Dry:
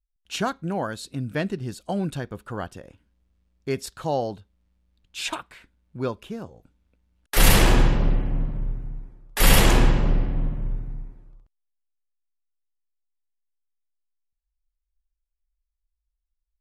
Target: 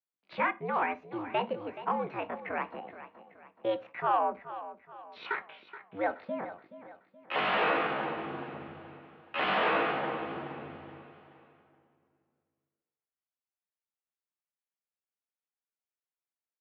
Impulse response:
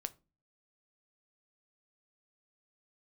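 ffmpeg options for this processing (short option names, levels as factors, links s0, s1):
-filter_complex "[0:a]highpass=170,acrossover=split=340|650|2300[s0][s1][s2][s3];[s0]acompressor=threshold=0.0126:ratio=5[s4];[s4][s1][s2][s3]amix=inputs=4:normalize=0,asetrate=70004,aresample=44100,atempo=0.629961,asplit=2[s5][s6];[s6]highpass=f=720:p=1,volume=6.31,asoftclip=type=tanh:threshold=0.422[s7];[s5][s7]amix=inputs=2:normalize=0,lowpass=f=1400:p=1,volume=0.501,aecho=1:1:425|850|1275|1700:0.2|0.0838|0.0352|0.0148[s8];[1:a]atrim=start_sample=2205[s9];[s8][s9]afir=irnorm=-1:irlink=0,highpass=f=230:t=q:w=0.5412,highpass=f=230:t=q:w=1.307,lowpass=f=3200:t=q:w=0.5176,lowpass=f=3200:t=q:w=0.7071,lowpass=f=3200:t=q:w=1.932,afreqshift=-96,volume=0.668"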